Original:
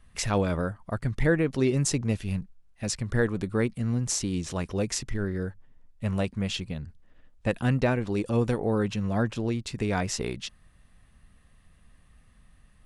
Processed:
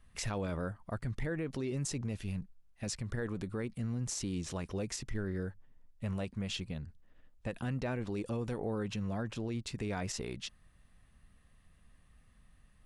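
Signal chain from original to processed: peak limiter -22 dBFS, peak gain reduction 10 dB; trim -5.5 dB

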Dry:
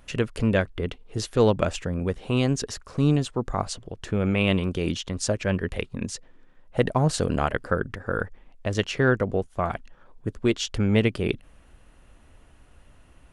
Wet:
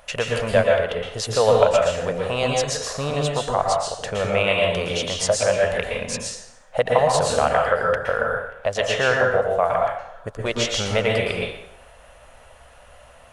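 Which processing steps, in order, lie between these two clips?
resonant low shelf 430 Hz -10.5 dB, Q 3; in parallel at +2 dB: compression, threshold -33 dBFS, peak gain reduction 18.5 dB; on the sum: plate-style reverb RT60 0.71 s, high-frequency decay 0.9×, pre-delay 105 ms, DRR -1 dB

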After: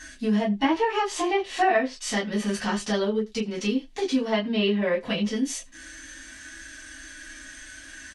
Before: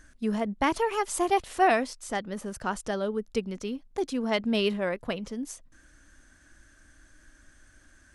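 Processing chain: frequency weighting D; low-pass that closes with the level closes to 2.6 kHz, closed at -19 dBFS; dynamic bell 2.7 kHz, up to -5 dB, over -38 dBFS, Q 0.77; harmonic-percussive split percussive -12 dB; compression 3:1, threshold -38 dBFS, peak gain reduction 14.5 dB; delay 74 ms -23 dB; reverberation, pre-delay 3 ms, DRR -7 dB; trim +6 dB

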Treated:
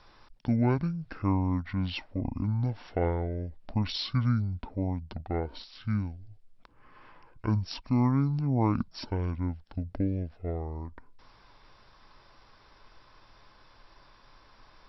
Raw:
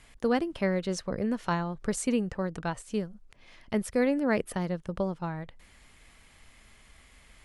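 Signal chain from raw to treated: speed mistake 15 ips tape played at 7.5 ips

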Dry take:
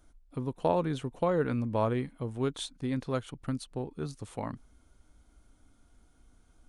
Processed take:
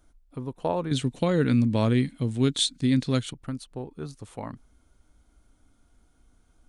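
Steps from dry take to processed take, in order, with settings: 0.91–3.33 s: ten-band graphic EQ 125 Hz +8 dB, 250 Hz +9 dB, 1 kHz -4 dB, 2 kHz +6 dB, 4 kHz +12 dB, 8 kHz +12 dB

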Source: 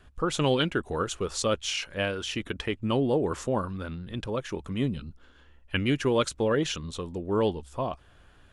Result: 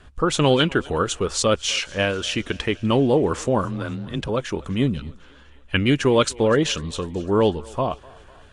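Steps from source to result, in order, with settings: thinning echo 249 ms, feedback 63%, high-pass 350 Hz, level -22 dB; 3.64–4.29 s: frequency shift +22 Hz; trim +7 dB; Vorbis 48 kbps 22.05 kHz

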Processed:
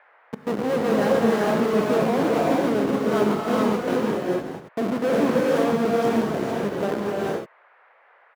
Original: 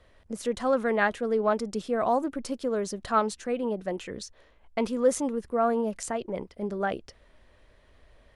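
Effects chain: spectral sustain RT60 0.66 s; on a send: delay 879 ms -19 dB; on the sum: Schmitt trigger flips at -25 dBFS; treble shelf 9.8 kHz +6 dB; in parallel at +1 dB: peak limiter -29 dBFS, peak gain reduction 10.5 dB; on the sum: Bessel high-pass 350 Hz, order 4; tilt EQ -4.5 dB/octave; gated-style reverb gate 470 ms rising, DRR -3.5 dB; band noise 490–2000 Hz -56 dBFS

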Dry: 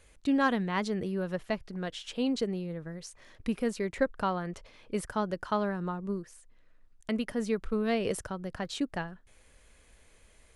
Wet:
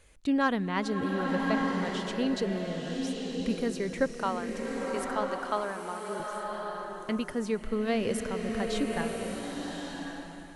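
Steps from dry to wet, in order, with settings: 4.19–6.20 s: high-pass 410 Hz 12 dB/octave; swelling reverb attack 1130 ms, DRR 1 dB

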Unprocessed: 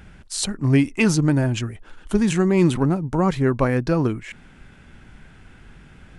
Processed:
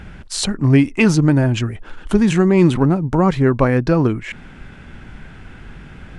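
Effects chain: treble shelf 6.7 kHz -11 dB; in parallel at 0 dB: compression, threshold -29 dBFS, peak gain reduction 16 dB; on the sum: trim +3 dB

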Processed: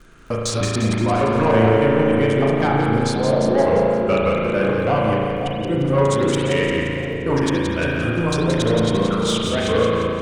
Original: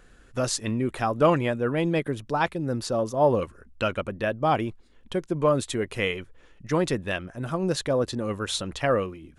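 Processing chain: time reversed locally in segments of 139 ms; crackle 26 per s -44 dBFS; in parallel at -1.5 dB: peak limiter -20 dBFS, peak gain reduction 11.5 dB; on the sum: speed mistake 48 kHz file played as 44.1 kHz; saturation -14.5 dBFS, distortion -16 dB; on a send: two-band feedback delay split 730 Hz, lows 526 ms, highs 174 ms, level -5.5 dB; on the sum: spring tank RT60 1.8 s, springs 36 ms, chirp 65 ms, DRR -2.5 dB

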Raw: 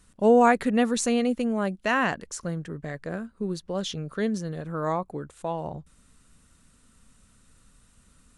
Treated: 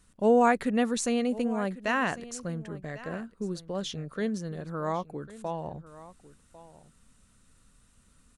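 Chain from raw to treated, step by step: delay 1099 ms -17.5 dB; trim -3.5 dB

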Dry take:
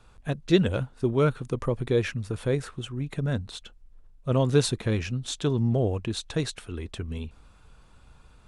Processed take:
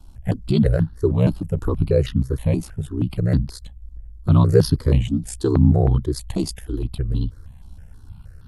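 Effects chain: tone controls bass +13 dB, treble +4 dB; ring modulator 32 Hz; formant shift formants +3 st; stepped phaser 6.3 Hz 470–2200 Hz; trim +4.5 dB

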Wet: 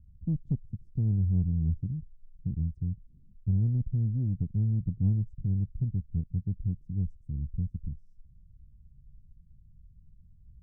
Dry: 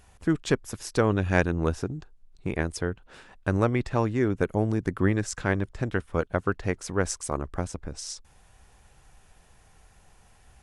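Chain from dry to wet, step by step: inverse Chebyshev low-pass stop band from 610 Hz, stop band 60 dB; in parallel at -6.5 dB: saturation -28 dBFS, distortion -13 dB

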